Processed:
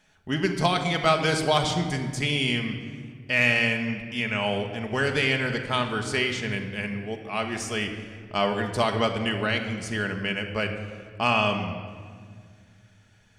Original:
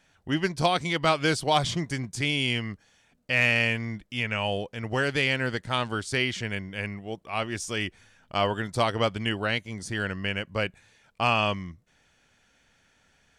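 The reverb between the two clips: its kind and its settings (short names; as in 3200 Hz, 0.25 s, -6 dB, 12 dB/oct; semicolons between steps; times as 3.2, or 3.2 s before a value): shoebox room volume 3300 m³, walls mixed, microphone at 1.4 m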